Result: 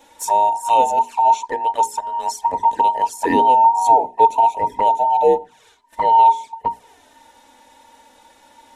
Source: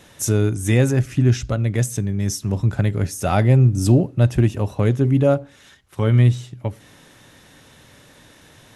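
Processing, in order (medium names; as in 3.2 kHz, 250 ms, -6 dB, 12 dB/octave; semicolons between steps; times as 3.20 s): every band turned upside down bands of 1 kHz; peaking EQ 7.8 kHz +4 dB 0.26 oct; band-stop 1.3 kHz, Q 7.9; touch-sensitive flanger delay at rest 3.8 ms, full sweep at -15.5 dBFS; hum notches 60/120/180/240/300/360/420 Hz; small resonant body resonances 260/430/930/1800 Hz, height 9 dB, ringing for 45 ms; 1.80–3.65 s: three bands compressed up and down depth 40%; trim -1 dB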